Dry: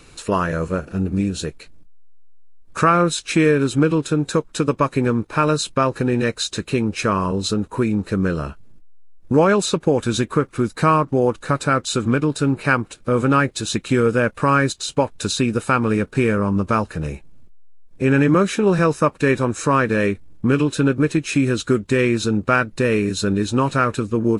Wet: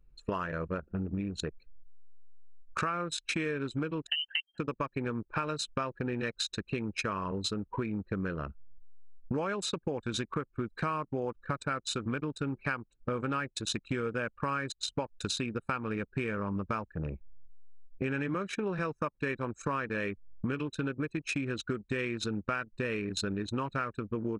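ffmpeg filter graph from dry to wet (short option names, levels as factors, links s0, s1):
-filter_complex "[0:a]asettb=1/sr,asplit=3[s0][s1][s2];[s0]atrim=end=4.074[s3];[s1]atrim=start=4.07:end=4.58,asetpts=PTS-STARTPTS,afade=t=in:d=0.004:c=qsin,afade=t=out:st=0.506:d=0.004:c=qsin,equalizer=f=170:t=o:w=0.38:g=-5,lowpass=f=2700:t=q:w=0.5098,lowpass=f=2700:t=q:w=0.6013,lowpass=f=2700:t=q:w=0.9,lowpass=f=2700:t=q:w=2.563,afreqshift=-3200[s4];[s2]atrim=start=4.576[s5];[s3][s4]acrossfade=d=0.004:c1=hsin:c2=qsin[s6];[s6][s5]acrossfade=d=0.004:c1=qsin:c2=hsin,anlmdn=398,equalizer=f=2500:w=0.43:g=7,acompressor=threshold=0.0501:ratio=6,volume=0.562"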